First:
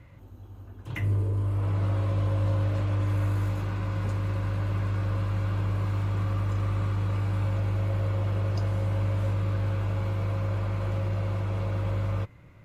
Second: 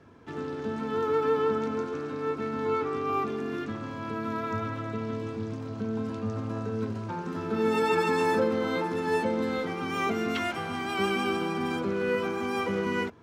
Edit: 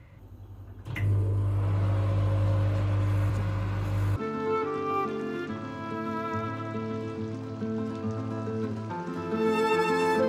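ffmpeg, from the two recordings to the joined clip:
-filter_complex "[0:a]apad=whole_dur=10.28,atrim=end=10.28,asplit=2[s0][s1];[s0]atrim=end=3.302[s2];[s1]atrim=start=3.298:end=4.162,asetpts=PTS-STARTPTS,areverse[s3];[1:a]atrim=start=2.348:end=8.47[s4];[s2][s3]acrossfade=d=0.004:c1=hsin:c2=hsin[s5];[s5][s4]acrossfade=d=0.004:c1=hsin:c2=hsin"

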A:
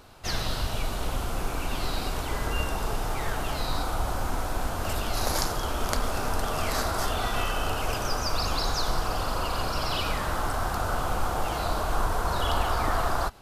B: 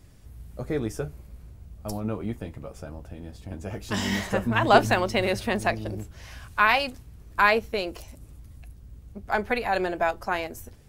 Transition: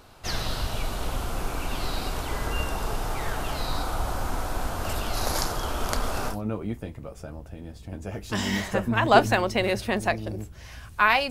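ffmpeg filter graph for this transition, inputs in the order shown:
-filter_complex "[0:a]apad=whole_dur=11.3,atrim=end=11.3,atrim=end=6.37,asetpts=PTS-STARTPTS[s0];[1:a]atrim=start=1.86:end=6.89,asetpts=PTS-STARTPTS[s1];[s0][s1]acrossfade=d=0.1:c1=tri:c2=tri"

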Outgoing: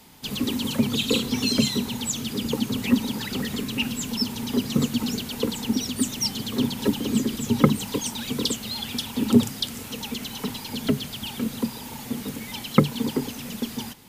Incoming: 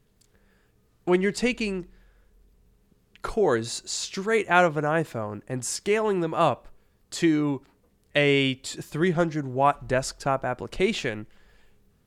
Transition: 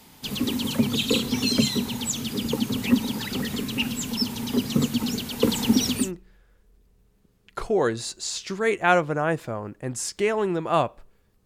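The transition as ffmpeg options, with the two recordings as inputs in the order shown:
-filter_complex "[0:a]asettb=1/sr,asplit=3[s0][s1][s2];[s0]atrim=end=5.424[s3];[s1]atrim=start=5.42:end=6.12,asetpts=PTS-STARTPTS,afade=t=in:d=0.004:c=qsin,afade=t=out:st=0.696:d=0.004:c=qsin,acontrast=21[s4];[s2]atrim=start=6.116[s5];[s3][s4]acrossfade=d=0.004:c1=hsin:c2=qsin[s6];[s6][s5]acrossfade=d=0.004:c1=qsin:c2=hsin,apad=whole_dur=11.45,atrim=end=11.45,atrim=end=6.12,asetpts=PTS-STARTPTS[s7];[1:a]atrim=start=1.59:end=7.12,asetpts=PTS-STARTPTS[s8];[s7][s8]acrossfade=d=0.2:c1=tri:c2=tri"

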